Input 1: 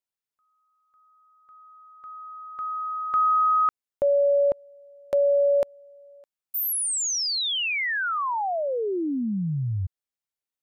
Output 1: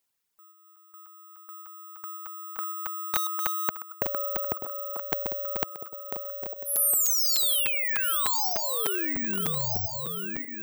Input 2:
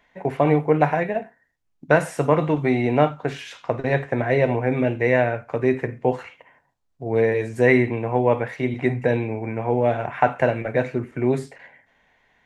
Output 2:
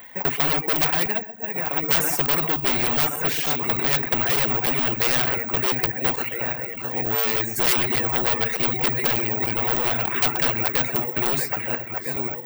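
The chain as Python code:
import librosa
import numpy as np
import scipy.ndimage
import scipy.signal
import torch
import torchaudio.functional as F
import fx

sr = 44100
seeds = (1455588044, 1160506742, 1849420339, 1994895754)

y = fx.reverse_delay_fb(x, sr, ms=653, feedback_pct=53, wet_db=-11.5)
y = fx.dynamic_eq(y, sr, hz=560.0, q=4.1, threshold_db=-35.0, ratio=6.0, max_db=-8)
y = scipy.signal.sosfilt(scipy.signal.butter(2, 53.0, 'highpass', fs=sr, output='sos'), y)
y = fx.notch(y, sr, hz=620.0, q=12.0)
y = y + 10.0 ** (-14.5 / 20.0) * np.pad(y, (int(129 * sr / 1000.0), 0))[:len(y)]
y = (np.kron(scipy.signal.resample_poly(y, 1, 2), np.eye(2)[0]) * 2)[:len(y)]
y = fx.high_shelf(y, sr, hz=7900.0, db=5.0)
y = np.clip(y, -10.0 ** (-11.5 / 20.0), 10.0 ** (-11.5 / 20.0))
y = fx.dereverb_blind(y, sr, rt60_s=0.7)
y = fx.buffer_crackle(y, sr, first_s=0.76, period_s=0.3, block=256, kind='zero')
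y = fx.spectral_comp(y, sr, ratio=2.0)
y = F.gain(torch.from_numpy(y), 7.0).numpy()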